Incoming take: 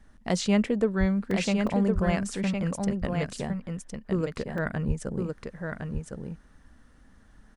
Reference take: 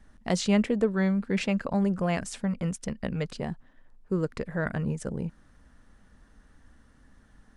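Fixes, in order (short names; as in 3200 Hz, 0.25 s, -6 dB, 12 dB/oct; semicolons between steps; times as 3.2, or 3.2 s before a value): de-plosive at 0.99/1.94/4.87; interpolate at 1.31/1.67/4.58, 3.1 ms; inverse comb 1.06 s -5 dB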